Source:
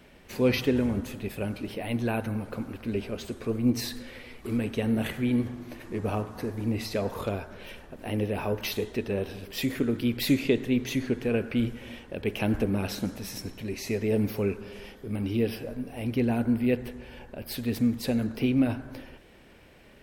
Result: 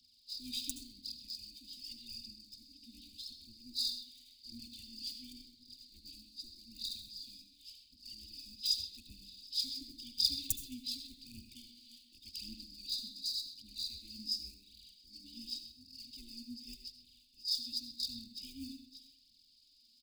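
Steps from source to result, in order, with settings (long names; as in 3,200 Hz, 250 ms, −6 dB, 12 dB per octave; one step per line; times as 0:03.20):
hearing-aid frequency compression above 3,500 Hz 4 to 1
elliptic high-pass filter 270 Hz, stop band 60 dB
high-shelf EQ 3,300 Hz +5.5 dB
in parallel at −8 dB: wrap-around overflow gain 13.5 dB
on the sum: phase shifter 0.88 Hz, delay 4.5 ms, feedback 56%
inverse Chebyshev band-stop filter 450–1,600 Hz, stop band 80 dB
far-end echo of a speakerphone 130 ms, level −7 dB
on a send at −8.5 dB: convolution reverb RT60 0.55 s, pre-delay 63 ms
on the sum: level +8.5 dB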